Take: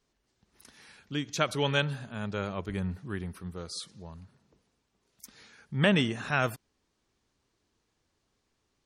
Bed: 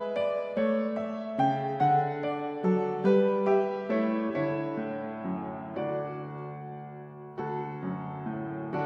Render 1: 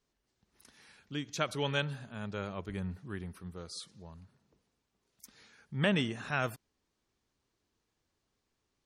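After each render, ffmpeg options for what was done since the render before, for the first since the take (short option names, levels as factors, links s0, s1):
-af "volume=0.562"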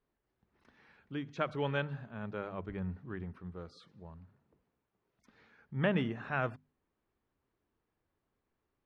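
-af "lowpass=1900,bandreject=f=50:t=h:w=6,bandreject=f=100:t=h:w=6,bandreject=f=150:t=h:w=6,bandreject=f=200:t=h:w=6,bandreject=f=250:t=h:w=6"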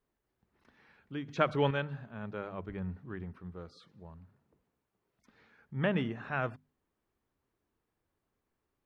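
-filter_complex "[0:a]asettb=1/sr,asplit=3[s0][s1][s2];[s0]atrim=end=1.284[s3];[s1]atrim=start=1.28:end=1.71,asetpts=PTS-STARTPTS,afade=t=in:d=0.004:c=qsin,afade=t=out:st=0.426:d=0.004:c=qsin,acontrast=52[s4];[s2]atrim=start=1.706[s5];[s3][s4]acrossfade=d=0.004:c1=hsin:c2=qsin[s6];[s6][s5]acrossfade=d=0.004:c1=qsin:c2=hsin"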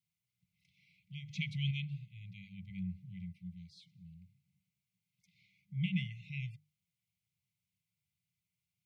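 -af "highpass=f=100:w=0.5412,highpass=f=100:w=1.3066,afftfilt=real='re*(1-between(b*sr/4096,200,2000))':imag='im*(1-between(b*sr/4096,200,2000))':win_size=4096:overlap=0.75"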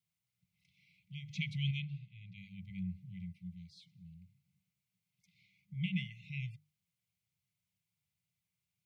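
-filter_complex "[0:a]asplit=3[s0][s1][s2];[s0]afade=t=out:st=1.79:d=0.02[s3];[s1]highpass=110,lowpass=5000,afade=t=in:st=1.79:d=0.02,afade=t=out:st=2.36:d=0.02[s4];[s2]afade=t=in:st=2.36:d=0.02[s5];[s3][s4][s5]amix=inputs=3:normalize=0,asettb=1/sr,asplit=3[s6][s7][s8];[s6]atrim=end=5.744[s9];[s7]atrim=start=5.74:end=6.24,asetpts=PTS-STARTPTS,afade=t=in:d=0.004:c=qsin,afade=t=out:st=0.496:d=0.004:c=qsin,equalizer=f=93:t=o:w=0.79:g=-10[s10];[s8]atrim=start=6.236[s11];[s9][s10]acrossfade=d=0.004:c1=hsin:c2=qsin[s12];[s12][s11]acrossfade=d=0.004:c1=qsin:c2=hsin"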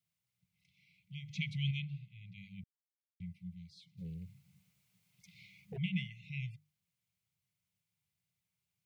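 -filter_complex "[0:a]asplit=3[s0][s1][s2];[s0]afade=t=out:st=3.97:d=0.02[s3];[s1]aeval=exprs='0.0106*sin(PI/2*2.51*val(0)/0.0106)':c=same,afade=t=in:st=3.97:d=0.02,afade=t=out:st=5.76:d=0.02[s4];[s2]afade=t=in:st=5.76:d=0.02[s5];[s3][s4][s5]amix=inputs=3:normalize=0,asplit=3[s6][s7][s8];[s6]atrim=end=2.64,asetpts=PTS-STARTPTS,afade=t=out:st=2.636:d=0.004:c=hsin[s9];[s7]atrim=start=2.64:end=3.2,asetpts=PTS-STARTPTS,volume=0[s10];[s8]atrim=start=3.2,asetpts=PTS-STARTPTS,afade=t=in:d=0.004:c=hsin[s11];[s9][s10][s11]concat=n=3:v=0:a=1"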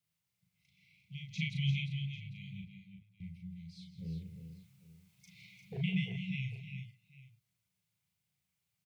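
-filter_complex "[0:a]asplit=2[s0][s1];[s1]adelay=37,volume=0.708[s2];[s0][s2]amix=inputs=2:normalize=0,aecho=1:1:162|335|351|796:0.237|0.141|0.376|0.112"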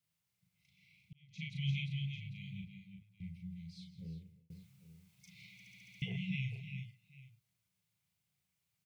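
-filter_complex "[0:a]asplit=10[s0][s1][s2][s3][s4][s5][s6][s7][s8][s9];[s0]atrim=end=1.13,asetpts=PTS-STARTPTS,afade=t=out:st=1.126:d=0.004:c=hsin[s10];[s1]atrim=start=1.13:end=4.5,asetpts=PTS-STARTPTS,afade=t=in:d=1.18:c=qsin,afade=t=out:st=2.65:d=0.72[s11];[s2]atrim=start=4.5:end=5.602,asetpts=PTS-STARTPTS,afade=t=in:d=0.004:c=hsin[s12];[s3]atrim=start=5.528:end=5.602[s13];[s4]atrim=start=5.528:end=5.602[s14];[s5]atrim=start=5.528:end=5.602[s15];[s6]atrim=start=5.528:end=5.602[s16];[s7]atrim=start=5.528:end=5.602[s17];[s8]atrim=start=5.528:end=5.602[s18];[s9]atrim=start=6.018[s19];[s10][s11][s12]concat=n=3:v=0:a=1[s20];[s20][s13]acrossfade=d=0.004:c1=hsin:c2=hsin[s21];[s21][s14]acrossfade=d=0.004:c1=hsin:c2=hsin[s22];[s22][s15]acrossfade=d=0.004:c1=hsin:c2=hsin[s23];[s23][s16]acrossfade=d=0.004:c1=hsin:c2=hsin[s24];[s24][s17]acrossfade=d=0.004:c1=hsin:c2=hsin[s25];[s25][s18]acrossfade=d=0.004:c1=hsin:c2=hsin[s26];[s26][s19]acrossfade=d=0.004:c1=hsin:c2=hsin"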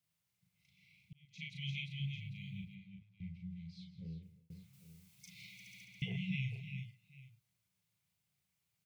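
-filter_complex "[0:a]asettb=1/sr,asplit=3[s0][s1][s2];[s0]atrim=end=1.254[s3];[s1]atrim=start=1.25:end=2,asetpts=PTS-STARTPTS,afade=t=in:d=0.004:c=qsin,afade=t=out:st=0.746:d=0.004:c=qsin,lowshelf=f=300:g=-9[s4];[s2]atrim=start=1.996[s5];[s3][s4]acrossfade=d=0.004:c1=hsin:c2=qsin[s6];[s6][s5]acrossfade=d=0.004:c1=qsin:c2=hsin,asettb=1/sr,asplit=3[s7][s8][s9];[s7]atrim=end=2.754[s10];[s8]atrim=start=2.75:end=4.23,asetpts=PTS-STARTPTS,afade=t=in:d=0.004:c=qsin,afade=t=out:st=1.476:d=0.004:c=qsin,lowpass=4600[s11];[s9]atrim=start=4.226[s12];[s10][s11]acrossfade=d=0.004:c1=hsin:c2=qsin[s13];[s13][s12]acrossfade=d=0.004:c1=qsin:c2=hsin,asettb=1/sr,asplit=3[s14][s15][s16];[s14]atrim=end=4.734[s17];[s15]atrim=start=4.73:end=5.85,asetpts=PTS-STARTPTS,afade=t=in:d=0.004:c=qsin,afade=t=out:st=1.116:d=0.004:c=qsin,highshelf=f=3400:g=7.5[s18];[s16]atrim=start=5.846[s19];[s17][s18]acrossfade=d=0.004:c1=hsin:c2=qsin[s20];[s20][s19]acrossfade=d=0.004:c1=qsin:c2=hsin"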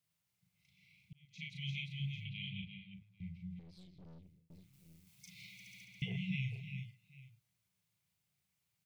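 -filter_complex "[0:a]asettb=1/sr,asplit=3[s0][s1][s2];[s0]atrim=end=2.254[s3];[s1]atrim=start=2.25:end=2.94,asetpts=PTS-STARTPTS,afade=t=in:d=0.004:c=qsin,afade=t=out:st=0.686:d=0.004:c=qsin,lowpass=f=3100:t=q:w=4.6[s4];[s2]atrim=start=2.936[s5];[s3][s4]acrossfade=d=0.004:c1=hsin:c2=qsin[s6];[s6][s5]acrossfade=d=0.004:c1=qsin:c2=hsin,asettb=1/sr,asplit=3[s7][s8][s9];[s7]atrim=end=3.594[s10];[s8]atrim=start=3.59:end=5.07,asetpts=PTS-STARTPTS,afade=t=in:d=0.004:c=qsin,afade=t=out:st=1.476:d=0.004:c=qsin,aeval=exprs='(tanh(501*val(0)+0.6)-tanh(0.6))/501':c=same[s11];[s9]atrim=start=5.066[s12];[s10][s11]acrossfade=d=0.004:c1=hsin:c2=qsin[s13];[s13][s12]acrossfade=d=0.004:c1=qsin:c2=hsin"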